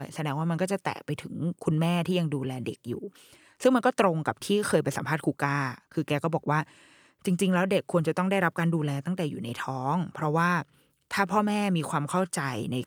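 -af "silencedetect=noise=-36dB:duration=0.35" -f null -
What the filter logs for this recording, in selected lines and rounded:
silence_start: 3.07
silence_end: 3.60 | silence_duration: 0.53
silence_start: 6.63
silence_end: 7.25 | silence_duration: 0.62
silence_start: 10.62
silence_end: 11.11 | silence_duration: 0.49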